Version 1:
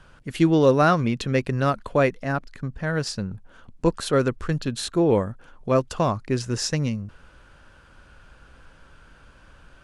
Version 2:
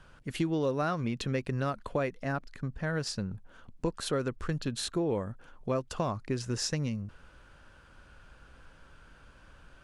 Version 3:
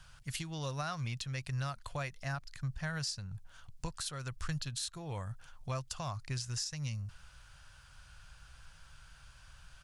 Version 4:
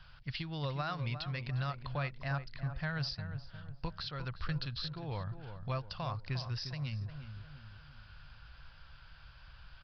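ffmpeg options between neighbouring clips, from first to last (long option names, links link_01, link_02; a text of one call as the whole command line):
ffmpeg -i in.wav -af "acompressor=threshold=-23dB:ratio=4,volume=-4.5dB" out.wav
ffmpeg -i in.wav -af "firequalizer=gain_entry='entry(140,0);entry(210,-16);entry(420,-18);entry(710,-5);entry(4900,8)':delay=0.05:min_phase=1,alimiter=level_in=3dB:limit=-24dB:level=0:latency=1:release=301,volume=-3dB" out.wav
ffmpeg -i in.wav -filter_complex "[0:a]asplit=2[link_01][link_02];[link_02]adelay=354,lowpass=frequency=1300:poles=1,volume=-8.5dB,asplit=2[link_03][link_04];[link_04]adelay=354,lowpass=frequency=1300:poles=1,volume=0.47,asplit=2[link_05][link_06];[link_06]adelay=354,lowpass=frequency=1300:poles=1,volume=0.47,asplit=2[link_07][link_08];[link_08]adelay=354,lowpass=frequency=1300:poles=1,volume=0.47,asplit=2[link_09][link_10];[link_10]adelay=354,lowpass=frequency=1300:poles=1,volume=0.47[link_11];[link_01][link_03][link_05][link_07][link_09][link_11]amix=inputs=6:normalize=0,aresample=11025,aresample=44100,volume=1dB" out.wav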